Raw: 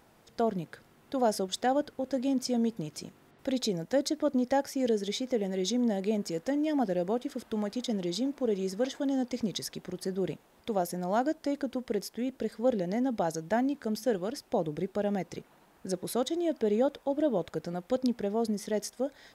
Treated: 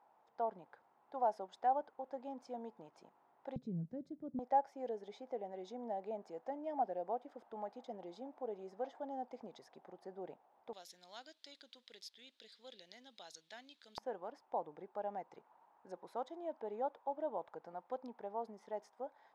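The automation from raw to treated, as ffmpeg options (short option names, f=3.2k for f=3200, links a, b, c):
-af "asetnsamples=n=441:p=0,asendcmd='3.56 bandpass f 150;4.39 bandpass f 790;10.73 bandpass f 3800;13.98 bandpass f 890',bandpass=f=860:t=q:w=4.1:csg=0"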